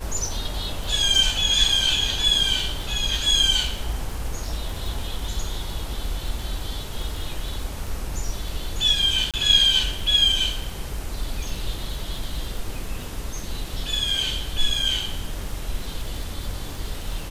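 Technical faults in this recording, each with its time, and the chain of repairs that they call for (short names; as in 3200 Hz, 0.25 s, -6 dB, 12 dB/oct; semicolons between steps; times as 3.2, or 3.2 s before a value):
crackle 25/s -29 dBFS
9.31–9.34 gap 27 ms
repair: de-click; interpolate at 9.31, 27 ms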